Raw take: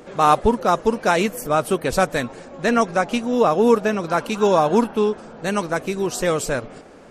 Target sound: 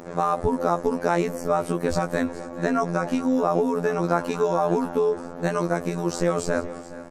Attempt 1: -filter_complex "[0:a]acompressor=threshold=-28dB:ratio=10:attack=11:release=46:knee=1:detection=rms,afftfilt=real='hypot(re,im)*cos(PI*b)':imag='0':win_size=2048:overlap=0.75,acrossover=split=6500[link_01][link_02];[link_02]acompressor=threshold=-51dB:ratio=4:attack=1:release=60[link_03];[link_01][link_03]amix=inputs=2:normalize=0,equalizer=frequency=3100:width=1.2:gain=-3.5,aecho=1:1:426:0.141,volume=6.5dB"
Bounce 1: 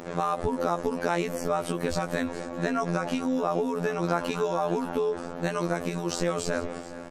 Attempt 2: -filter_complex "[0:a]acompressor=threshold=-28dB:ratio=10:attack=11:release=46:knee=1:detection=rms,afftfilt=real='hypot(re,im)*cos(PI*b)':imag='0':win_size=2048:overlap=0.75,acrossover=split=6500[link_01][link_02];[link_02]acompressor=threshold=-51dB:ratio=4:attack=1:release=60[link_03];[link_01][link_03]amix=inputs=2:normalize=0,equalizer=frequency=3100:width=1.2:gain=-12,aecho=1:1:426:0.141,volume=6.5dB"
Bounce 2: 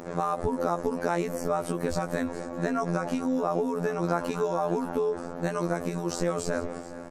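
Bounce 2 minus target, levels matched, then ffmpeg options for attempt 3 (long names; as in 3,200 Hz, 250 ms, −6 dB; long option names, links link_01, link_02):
downward compressor: peak gain reduction +5.5 dB
-filter_complex "[0:a]acompressor=threshold=-22dB:ratio=10:attack=11:release=46:knee=1:detection=rms,afftfilt=real='hypot(re,im)*cos(PI*b)':imag='0':win_size=2048:overlap=0.75,acrossover=split=6500[link_01][link_02];[link_02]acompressor=threshold=-51dB:ratio=4:attack=1:release=60[link_03];[link_01][link_03]amix=inputs=2:normalize=0,equalizer=frequency=3100:width=1.2:gain=-12,aecho=1:1:426:0.141,volume=6.5dB"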